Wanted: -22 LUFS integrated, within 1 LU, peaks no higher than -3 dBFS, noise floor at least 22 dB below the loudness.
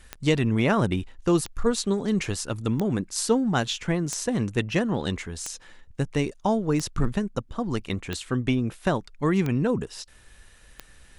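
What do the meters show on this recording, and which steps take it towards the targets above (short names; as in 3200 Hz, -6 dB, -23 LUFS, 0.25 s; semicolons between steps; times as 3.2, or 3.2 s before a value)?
clicks 9; loudness -26.0 LUFS; peak -8.0 dBFS; loudness target -22.0 LUFS
-> de-click; gain +4 dB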